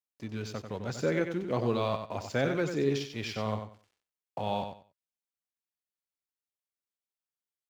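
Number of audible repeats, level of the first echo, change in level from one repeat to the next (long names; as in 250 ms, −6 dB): 3, −7.5 dB, −13.5 dB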